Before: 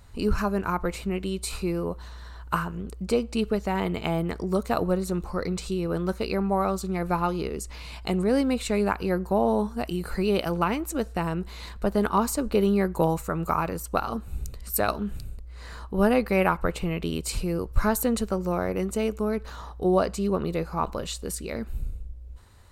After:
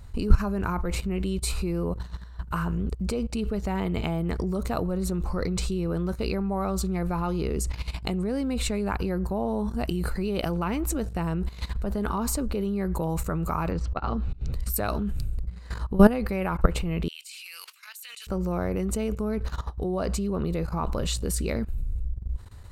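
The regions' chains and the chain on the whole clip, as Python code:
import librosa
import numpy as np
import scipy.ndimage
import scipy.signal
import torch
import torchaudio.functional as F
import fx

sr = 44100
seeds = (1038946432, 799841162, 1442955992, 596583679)

y = fx.chain(x, sr, fx.auto_swell(attack_ms=194.0),
    fx.lowpass(hz=4600.0, slope=24),
    fx.band_squash(depth_pct=100), at=(13.71, 14.53))
y = fx.chain(y, sr, fx.ladder_highpass(hz=2200.0, resonance_pct=45),
    fx.sustainer(db_per_s=28.0), at=(17.08, 18.27))
y = fx.low_shelf(y, sr, hz=200.0, db=9.5)
y = fx.level_steps(y, sr, step_db=16)
y = y * 10.0 ** (5.0 / 20.0)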